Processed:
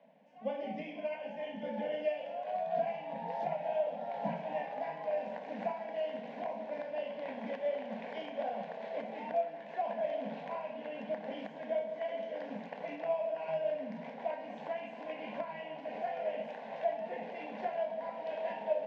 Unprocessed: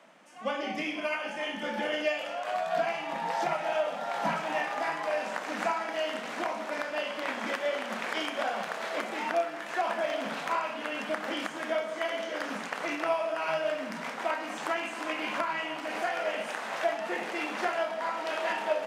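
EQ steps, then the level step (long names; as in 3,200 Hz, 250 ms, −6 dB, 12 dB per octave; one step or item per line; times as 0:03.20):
head-to-tape spacing loss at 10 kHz 45 dB
phaser with its sweep stopped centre 340 Hz, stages 6
0.0 dB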